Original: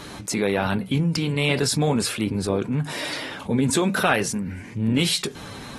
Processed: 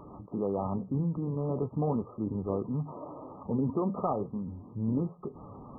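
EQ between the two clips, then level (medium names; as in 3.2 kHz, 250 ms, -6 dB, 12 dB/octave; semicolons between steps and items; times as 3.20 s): brick-wall FIR low-pass 1.3 kHz; -8.0 dB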